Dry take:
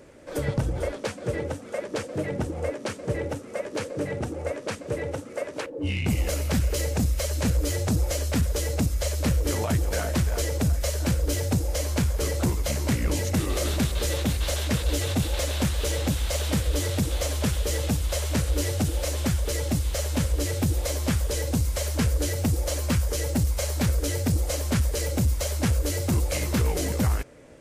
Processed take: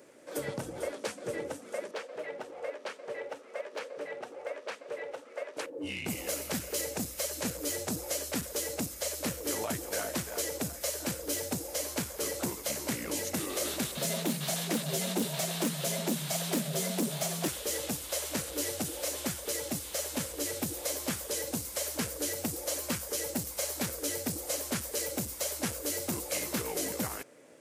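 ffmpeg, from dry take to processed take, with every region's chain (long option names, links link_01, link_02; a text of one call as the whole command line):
ffmpeg -i in.wav -filter_complex "[0:a]asettb=1/sr,asplit=3[link_01][link_02][link_03];[link_01]atrim=end=1.914[link_04];[link_02]atrim=start=1.91:end=5.57,asetpts=PTS-STARTPTS,afade=type=in:duration=0.004:curve=qsin,afade=type=out:start_time=3.656:duration=0.004:curve=qsin,acrossover=split=380 4500:gain=0.112 1 0.158[link_05][link_06][link_07];[link_05][link_06][link_07]amix=inputs=3:normalize=0,volume=23dB,asoftclip=hard,volume=-23dB,bandreject=frequency=320:width=6.5[link_08];[link_03]atrim=start=5.566[link_09];[link_04][link_08]acrossfade=duration=0.004:curve1=hsin:curve2=qsin[link_10];[link_10][link_09]acrossfade=duration=0.004:curve1=qsin:curve2=hsin,asettb=1/sr,asplit=3[link_11][link_12][link_13];[link_11]atrim=end=13.974[link_14];[link_12]atrim=start=13.97:end=17.48,asetpts=PTS-STARTPTS,afade=type=in:duration=0.004:curve=qsin,afade=type=out:start_time=3.506:duration=0.004:curve=qsin,equalizer=frequency=130:width_type=o:width=0.59:gain=8,aeval=exprs='0.158*(abs(mod(val(0)/0.158+3,4)-2)-1)':channel_layout=same,afreqshift=94[link_15];[link_13]atrim=start=17.476[link_16];[link_14][link_15]acrossfade=duration=0.004:curve1=hsin:curve2=qsin[link_17];[link_17][link_16]acrossfade=duration=0.004:curve1=qsin:curve2=hsin,highpass=240,highshelf=frequency=7900:gain=9,volume=-5.5dB" out.wav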